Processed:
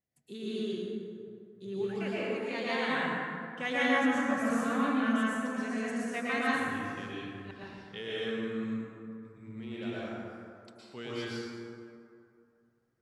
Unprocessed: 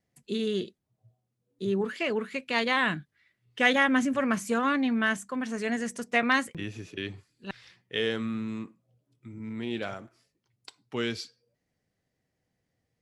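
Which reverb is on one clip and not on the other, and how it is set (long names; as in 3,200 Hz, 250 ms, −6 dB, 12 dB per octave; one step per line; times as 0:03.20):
dense smooth reverb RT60 2.5 s, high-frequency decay 0.45×, pre-delay 100 ms, DRR −8.5 dB
level −13 dB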